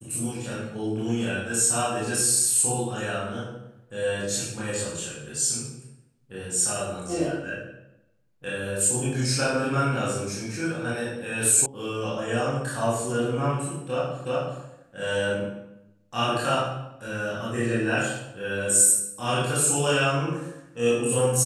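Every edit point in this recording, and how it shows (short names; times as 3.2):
11.66 sound cut off
14.25 repeat of the last 0.37 s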